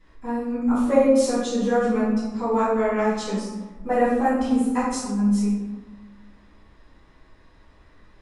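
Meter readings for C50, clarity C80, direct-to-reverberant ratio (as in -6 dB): -0.5 dB, 3.5 dB, -13.0 dB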